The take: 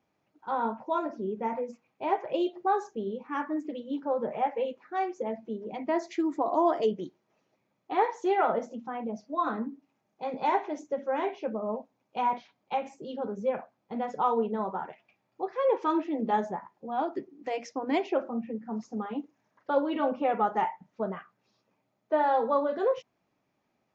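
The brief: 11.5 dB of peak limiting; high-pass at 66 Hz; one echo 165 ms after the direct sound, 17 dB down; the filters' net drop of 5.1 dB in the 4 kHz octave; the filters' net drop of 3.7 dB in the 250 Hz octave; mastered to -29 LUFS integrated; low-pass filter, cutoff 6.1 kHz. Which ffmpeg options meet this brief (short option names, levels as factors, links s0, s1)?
-af "highpass=66,lowpass=6100,equalizer=f=250:t=o:g=-5,equalizer=f=4000:t=o:g=-7,alimiter=level_in=1.12:limit=0.0631:level=0:latency=1,volume=0.891,aecho=1:1:165:0.141,volume=2.24"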